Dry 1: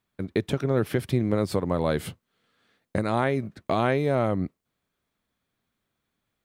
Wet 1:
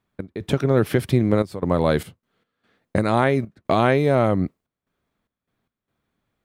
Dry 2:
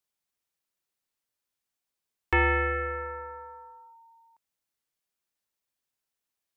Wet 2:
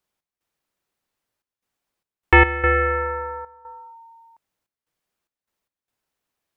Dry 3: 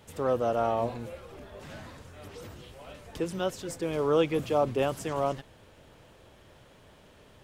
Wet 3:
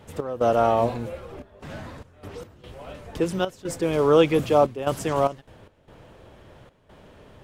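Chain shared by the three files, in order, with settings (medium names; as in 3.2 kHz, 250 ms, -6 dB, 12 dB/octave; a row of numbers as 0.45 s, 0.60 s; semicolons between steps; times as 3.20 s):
trance gate "x.xxxxx.xx.x.xxx" 74 bpm -12 dB; tape noise reduction on one side only decoder only; peak normalisation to -6 dBFS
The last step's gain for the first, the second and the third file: +5.5 dB, +11.0 dB, +7.5 dB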